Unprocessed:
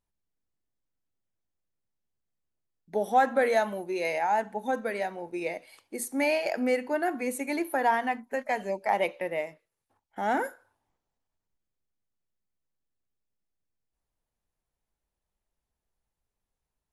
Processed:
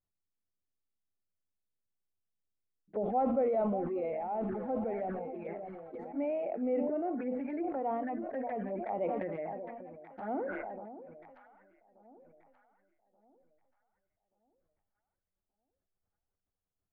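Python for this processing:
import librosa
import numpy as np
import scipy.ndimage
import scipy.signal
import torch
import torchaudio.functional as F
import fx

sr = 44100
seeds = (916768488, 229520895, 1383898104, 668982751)

y = fx.zero_step(x, sr, step_db=-36.5, at=(3.03, 5.19))
y = scipy.signal.sosfilt(scipy.signal.butter(4, 1500.0, 'lowpass', fs=sr, output='sos'), y)
y = fx.peak_eq(y, sr, hz=930.0, db=-10.5, octaves=0.27)
y = fx.env_flanger(y, sr, rest_ms=10.6, full_db=-26.5)
y = fx.echo_alternate(y, sr, ms=590, hz=990.0, feedback_pct=58, wet_db=-13.5)
y = fx.sustainer(y, sr, db_per_s=24.0)
y = y * librosa.db_to_amplitude(-5.0)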